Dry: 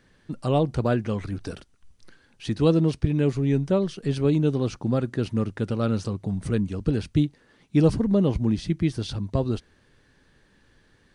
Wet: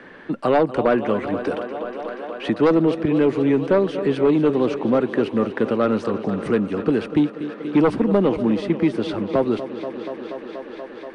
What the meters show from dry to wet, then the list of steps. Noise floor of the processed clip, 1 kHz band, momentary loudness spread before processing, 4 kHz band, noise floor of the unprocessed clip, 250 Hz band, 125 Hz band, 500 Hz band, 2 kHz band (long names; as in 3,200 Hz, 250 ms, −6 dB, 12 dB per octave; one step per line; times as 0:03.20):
−38 dBFS, +9.5 dB, 10 LU, +2.0 dB, −61 dBFS, +4.5 dB, −5.5 dB, +8.0 dB, +9.5 dB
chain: three-way crossover with the lows and the highs turned down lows −23 dB, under 230 Hz, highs −22 dB, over 2,900 Hz
on a send: feedback echo with a high-pass in the loop 240 ms, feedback 83%, high-pass 160 Hz, level −14.5 dB
on the sum: sine wavefolder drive 6 dB, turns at −9.5 dBFS
dynamic equaliser 8,800 Hz, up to +6 dB, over −55 dBFS, Q 1.5
multiband upward and downward compressor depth 40%